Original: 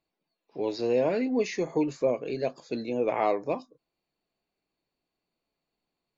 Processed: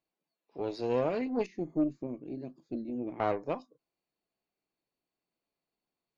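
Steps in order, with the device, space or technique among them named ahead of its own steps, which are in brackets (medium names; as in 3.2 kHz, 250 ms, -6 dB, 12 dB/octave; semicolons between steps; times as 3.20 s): 1.46–3.20 s: FFT filter 120 Hz 0 dB, 330 Hz +5 dB, 470 Hz -17 dB; tube preamp driven hard (valve stage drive 18 dB, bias 0.8; bass shelf 95 Hz -6 dB; treble shelf 6.1 kHz -7 dB)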